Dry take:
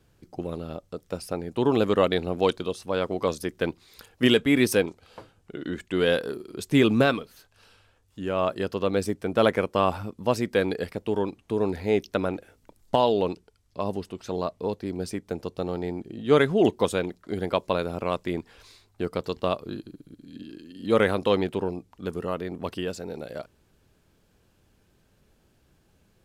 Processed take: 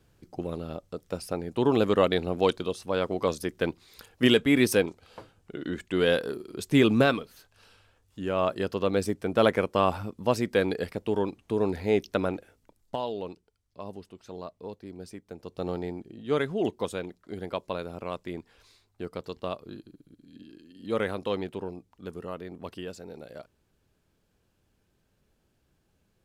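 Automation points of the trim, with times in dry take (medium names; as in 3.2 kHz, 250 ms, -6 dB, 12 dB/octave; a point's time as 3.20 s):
12.29 s -1 dB
13.00 s -11 dB
15.38 s -11 dB
15.68 s -1 dB
16.17 s -7.5 dB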